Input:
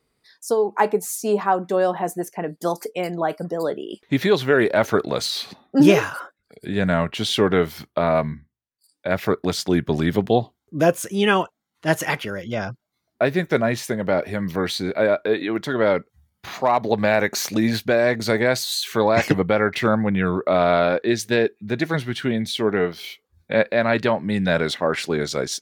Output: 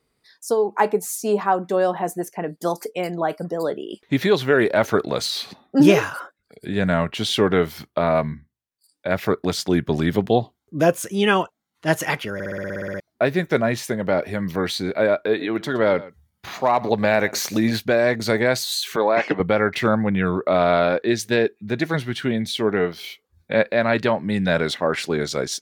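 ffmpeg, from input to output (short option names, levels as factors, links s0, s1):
-filter_complex "[0:a]asettb=1/sr,asplit=3[s0][s1][s2];[s0]atrim=end=15.274[s3];[s1]atrim=start=15.27:end=17.76,asetpts=PTS-STARTPTS,afade=t=in:d=0.004:c=qsin,afade=t=out:st=2.486:d=0.004:c=qsin,aecho=1:1:117:0.119,atrim=end_sample=109809[s4];[s2]atrim=start=17.756[s5];[s3][s4]acrossfade=d=0.004:c1=hsin:c2=qsin[s6];[s6][s5]acrossfade=d=0.004:c1=qsin:c2=hsin,asettb=1/sr,asplit=3[s7][s8][s9];[s7]atrim=end=18.964[s10];[s8]atrim=start=18.96:end=19.4,asetpts=PTS-STARTPTS,afade=t=in:d=0.004:c=qsin,afade=t=out:st=0.436:d=0.004:c=qsin,highpass=310,lowpass=3000[s11];[s9]atrim=start=19.396[s12];[s10][s11]acrossfade=d=0.004:c1=hsin:c2=qsin[s13];[s13][s12]acrossfade=d=0.004:c1=qsin:c2=hsin,asplit=12[s14][s15][s16][s17][s18][s19][s20][s21][s22][s23][s24][s25];[s14]atrim=end=12.402[s26];[s15]atrim=start=12.338:end=12.402[s27];[s16]atrim=start=12.338:end=12.402[s28];[s17]atrim=start=12.338:end=12.402[s29];[s18]atrim=start=12.338:end=12.402[s30];[s19]atrim=start=12.338:end=12.402[s31];[s20]atrim=start=12.338:end=12.402[s32];[s21]atrim=start=12.338:end=12.402[s33];[s22]atrim=start=12.338:end=12.402[s34];[s23]atrim=start=12.338:end=12.402[s35];[s24]atrim=start=12.338:end=12.402[s36];[s25]atrim=start=12.998[s37];[s26][s27]acrossfade=d=0.004:c1=hsin:c2=hsin[s38];[s38][s28]acrossfade=d=0.004:c1=hsin:c2=hsin[s39];[s39][s29]acrossfade=d=0.004:c1=hsin:c2=hsin[s40];[s40][s30]acrossfade=d=0.004:c1=hsin:c2=hsin[s41];[s41][s31]acrossfade=d=0.004:c1=hsin:c2=hsin[s42];[s42][s32]acrossfade=d=0.004:c1=hsin:c2=hsin[s43];[s43][s33]acrossfade=d=0.004:c1=hsin:c2=hsin[s44];[s44][s34]acrossfade=d=0.004:c1=hsin:c2=hsin[s45];[s45][s35]acrossfade=d=0.004:c1=hsin:c2=hsin[s46];[s46][s36]acrossfade=d=0.004:c1=hsin:c2=hsin[s47];[s47][s37]acrossfade=d=0.004:c1=hsin:c2=hsin"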